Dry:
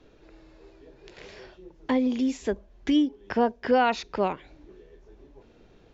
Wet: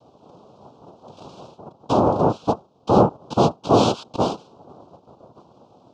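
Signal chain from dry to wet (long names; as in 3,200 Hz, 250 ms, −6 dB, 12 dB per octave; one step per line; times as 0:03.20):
cochlear-implant simulation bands 2
Butterworth band-reject 1,900 Hz, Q 1.1
high-frequency loss of the air 210 metres
level +7 dB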